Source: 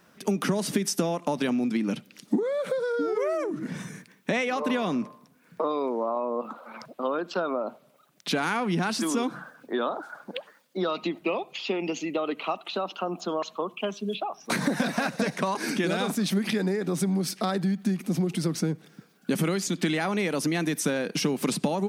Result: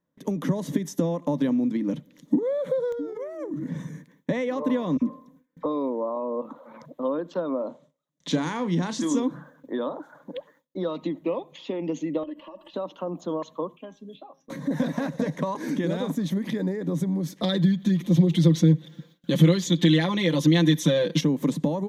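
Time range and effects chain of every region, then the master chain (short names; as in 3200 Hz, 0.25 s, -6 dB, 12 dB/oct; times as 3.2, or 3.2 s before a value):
2.92–3.69 high shelf 8300 Hz +4.5 dB + compressor 12:1, threshold -29 dBFS + wrapped overs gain 24 dB
4.97–5.66 comb 3.9 ms, depth 61% + dispersion lows, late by 47 ms, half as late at 1600 Hz
7.56–9.2 LPF 8200 Hz 24 dB/oct + high shelf 3100 Hz +10.5 dB + doubler 33 ms -12 dB
12.23–12.74 ripple EQ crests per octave 1.3, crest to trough 13 dB + compressor 8:1, threshold -39 dBFS + comb 3.5 ms, depth 86%
13.77–14.71 notch 880 Hz, Q 9.6 + resonator 270 Hz, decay 0.24 s, mix 70%
17.42–21.21 bell 3500 Hz +14.5 dB 1.1 oct + comb 5.8 ms, depth 98%
whole clip: tilt shelf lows +7.5 dB, about 780 Hz; gate with hold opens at -43 dBFS; ripple EQ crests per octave 1.1, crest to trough 9 dB; gain -4 dB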